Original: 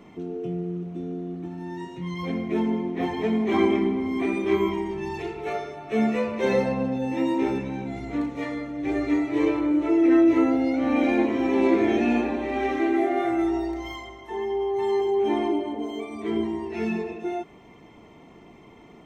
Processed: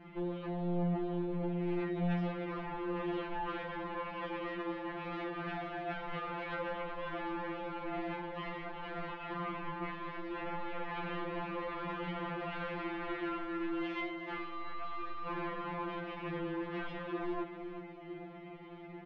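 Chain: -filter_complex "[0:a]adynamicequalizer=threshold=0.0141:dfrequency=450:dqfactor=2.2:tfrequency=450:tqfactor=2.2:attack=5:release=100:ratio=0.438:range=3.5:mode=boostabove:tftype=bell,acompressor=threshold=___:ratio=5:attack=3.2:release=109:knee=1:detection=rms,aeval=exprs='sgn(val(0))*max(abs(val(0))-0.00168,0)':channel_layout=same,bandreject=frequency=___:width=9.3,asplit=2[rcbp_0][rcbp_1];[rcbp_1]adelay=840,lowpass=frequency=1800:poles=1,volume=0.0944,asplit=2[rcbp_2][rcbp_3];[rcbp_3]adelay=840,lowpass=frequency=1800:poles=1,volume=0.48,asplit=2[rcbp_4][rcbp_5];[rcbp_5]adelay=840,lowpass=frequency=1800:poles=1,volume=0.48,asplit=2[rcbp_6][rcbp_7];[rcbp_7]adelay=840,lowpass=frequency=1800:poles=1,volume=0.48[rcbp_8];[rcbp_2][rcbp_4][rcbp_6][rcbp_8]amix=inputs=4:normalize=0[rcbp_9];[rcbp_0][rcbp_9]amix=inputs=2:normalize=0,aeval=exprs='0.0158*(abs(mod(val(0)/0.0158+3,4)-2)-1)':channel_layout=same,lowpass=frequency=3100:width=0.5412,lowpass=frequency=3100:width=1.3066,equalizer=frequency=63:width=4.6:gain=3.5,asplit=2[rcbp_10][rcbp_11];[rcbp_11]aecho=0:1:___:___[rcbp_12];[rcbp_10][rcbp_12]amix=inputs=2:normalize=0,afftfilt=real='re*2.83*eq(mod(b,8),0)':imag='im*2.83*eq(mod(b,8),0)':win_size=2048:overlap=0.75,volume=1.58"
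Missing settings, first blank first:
0.0282, 1000, 374, 0.299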